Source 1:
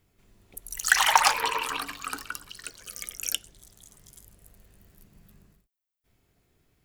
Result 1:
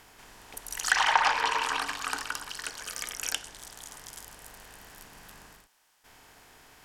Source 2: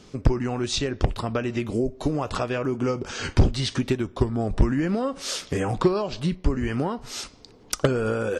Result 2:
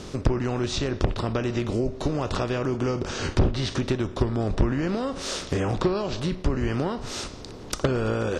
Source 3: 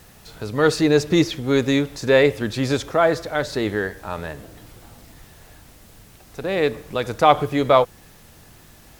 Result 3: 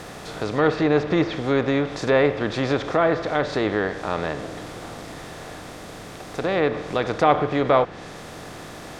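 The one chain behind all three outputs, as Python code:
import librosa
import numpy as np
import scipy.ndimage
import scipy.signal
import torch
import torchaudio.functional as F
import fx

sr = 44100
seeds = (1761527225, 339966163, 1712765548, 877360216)

y = fx.bin_compress(x, sr, power=0.6)
y = fx.env_lowpass_down(y, sr, base_hz=2700.0, full_db=-11.5)
y = y * librosa.db_to_amplitude(-5.0)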